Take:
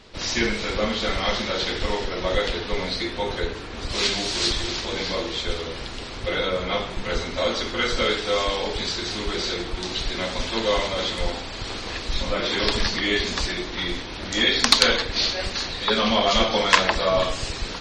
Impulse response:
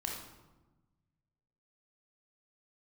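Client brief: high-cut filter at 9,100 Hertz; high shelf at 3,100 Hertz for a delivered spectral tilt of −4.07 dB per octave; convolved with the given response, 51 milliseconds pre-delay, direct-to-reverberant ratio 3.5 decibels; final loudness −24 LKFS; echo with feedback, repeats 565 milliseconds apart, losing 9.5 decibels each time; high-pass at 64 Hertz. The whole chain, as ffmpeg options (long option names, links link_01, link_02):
-filter_complex "[0:a]highpass=64,lowpass=9100,highshelf=frequency=3100:gain=-7.5,aecho=1:1:565|1130|1695|2260:0.335|0.111|0.0365|0.012,asplit=2[link_01][link_02];[1:a]atrim=start_sample=2205,adelay=51[link_03];[link_02][link_03]afir=irnorm=-1:irlink=0,volume=-5dB[link_04];[link_01][link_04]amix=inputs=2:normalize=0"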